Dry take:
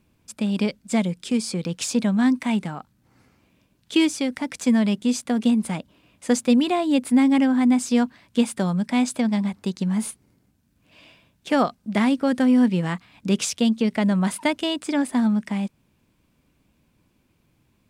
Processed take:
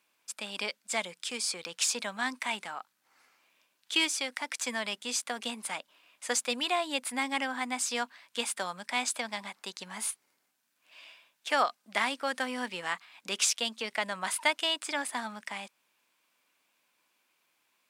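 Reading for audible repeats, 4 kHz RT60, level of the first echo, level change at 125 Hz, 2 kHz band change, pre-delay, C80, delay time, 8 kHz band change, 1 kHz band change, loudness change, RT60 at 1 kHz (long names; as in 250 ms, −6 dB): no echo audible, no reverb audible, no echo audible, −27.5 dB, 0.0 dB, no reverb audible, no reverb audible, no echo audible, 0.0 dB, −4.0 dB, −9.5 dB, no reverb audible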